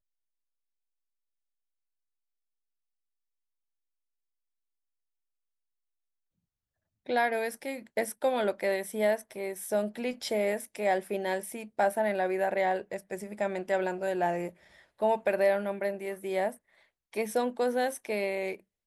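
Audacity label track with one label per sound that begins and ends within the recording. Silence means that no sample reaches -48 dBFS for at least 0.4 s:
7.060000	16.560000	sound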